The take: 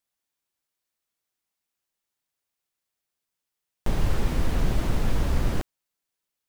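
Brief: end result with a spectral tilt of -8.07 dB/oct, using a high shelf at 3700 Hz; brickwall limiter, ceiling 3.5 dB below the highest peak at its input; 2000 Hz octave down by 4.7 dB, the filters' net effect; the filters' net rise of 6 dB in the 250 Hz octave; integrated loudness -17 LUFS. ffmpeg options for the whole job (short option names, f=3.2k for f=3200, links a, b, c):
-af "equalizer=f=250:t=o:g=8,equalizer=f=2k:t=o:g=-5.5,highshelf=f=3.7k:g=-3,volume=11dB,alimiter=limit=-3dB:level=0:latency=1"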